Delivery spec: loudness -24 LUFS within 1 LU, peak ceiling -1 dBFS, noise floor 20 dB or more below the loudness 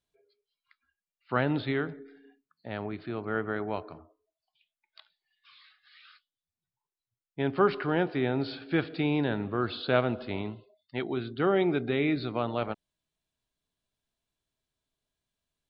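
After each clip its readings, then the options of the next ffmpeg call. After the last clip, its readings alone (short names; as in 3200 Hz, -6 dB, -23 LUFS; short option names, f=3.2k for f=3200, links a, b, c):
loudness -30.0 LUFS; peak -8.5 dBFS; loudness target -24.0 LUFS
-> -af "volume=6dB"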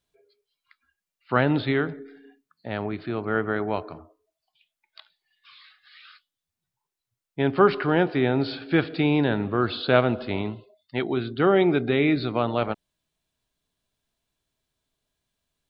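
loudness -24.0 LUFS; peak -2.5 dBFS; noise floor -87 dBFS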